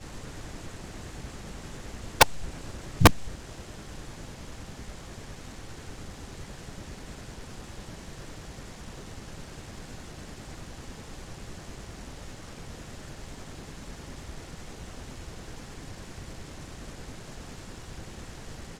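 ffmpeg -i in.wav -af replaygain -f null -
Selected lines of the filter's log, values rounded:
track_gain = +28.2 dB
track_peak = 0.502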